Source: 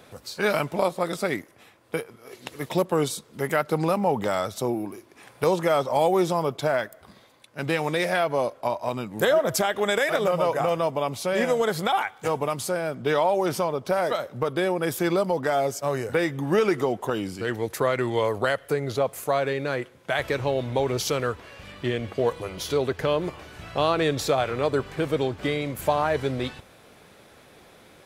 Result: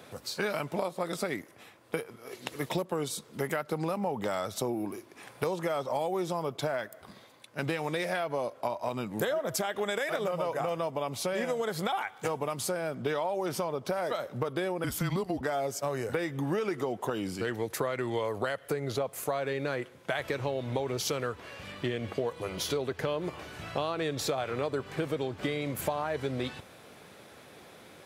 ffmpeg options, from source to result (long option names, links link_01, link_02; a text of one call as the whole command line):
ffmpeg -i in.wav -filter_complex "[0:a]asettb=1/sr,asplit=3[link_01][link_02][link_03];[link_01]atrim=end=14.844[link_04];[link_02]atrim=start=14.84:end=15.41,asetpts=PTS-STARTPTS,afade=type=in:duration=0.004:curve=qsin,afade=type=out:start_time=0.566:duration=0.004:curve=qsin,afreqshift=-190[link_05];[link_03]atrim=start=15.406[link_06];[link_04][link_05]acrossfade=duration=0.004:curve1=hsin:curve2=qsin[link_07];[link_07][link_06]acrossfade=duration=0.004:curve1=qsin:curve2=hsin,highpass=86,acompressor=threshold=-28dB:ratio=6" out.wav